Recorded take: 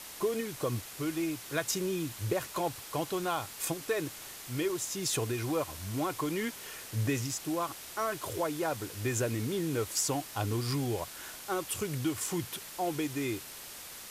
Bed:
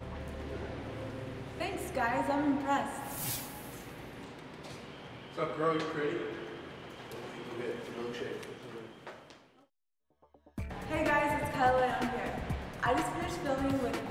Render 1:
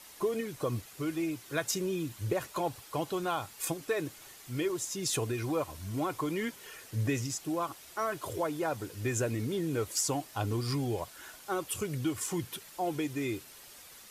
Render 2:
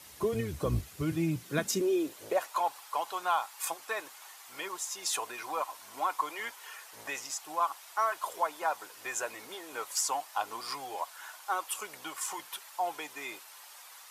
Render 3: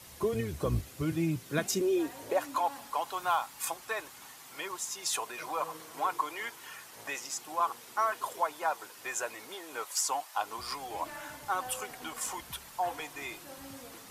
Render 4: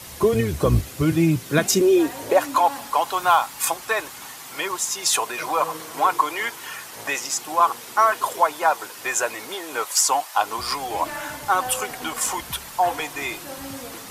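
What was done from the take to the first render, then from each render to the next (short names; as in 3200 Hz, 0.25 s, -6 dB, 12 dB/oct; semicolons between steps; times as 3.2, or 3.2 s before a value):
denoiser 8 dB, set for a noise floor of -46 dBFS
octaver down 1 oct, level -3 dB; high-pass sweep 71 Hz -> 900 Hz, 0.98–2.56
add bed -17 dB
gain +12 dB; limiter -3 dBFS, peak gain reduction 1.5 dB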